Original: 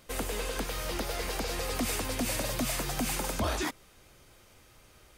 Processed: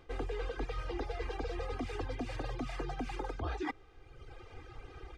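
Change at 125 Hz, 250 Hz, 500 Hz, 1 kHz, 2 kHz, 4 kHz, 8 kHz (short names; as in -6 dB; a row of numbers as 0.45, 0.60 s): -4.0, -6.0, -4.5, -5.5, -8.5, -14.5, -26.0 dB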